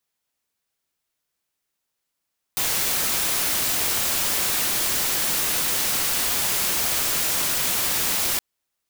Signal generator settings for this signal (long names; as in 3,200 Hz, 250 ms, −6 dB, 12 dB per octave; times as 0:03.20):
noise white, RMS −23 dBFS 5.82 s